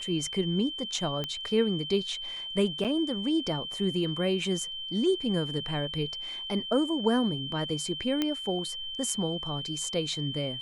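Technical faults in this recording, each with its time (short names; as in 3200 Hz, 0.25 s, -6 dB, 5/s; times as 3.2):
tone 3100 Hz -35 dBFS
1.24 pop -18 dBFS
2.84–2.85 gap 7.2 ms
8.22 pop -14 dBFS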